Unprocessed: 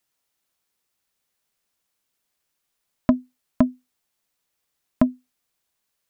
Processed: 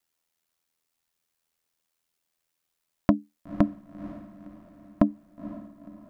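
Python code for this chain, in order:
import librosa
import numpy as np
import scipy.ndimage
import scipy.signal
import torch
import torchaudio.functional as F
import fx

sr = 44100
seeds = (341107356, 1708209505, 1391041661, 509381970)

y = x * np.sin(2.0 * np.pi * 41.0 * np.arange(len(x)) / sr)
y = fx.echo_diffused(y, sr, ms=494, feedback_pct=46, wet_db=-14.0)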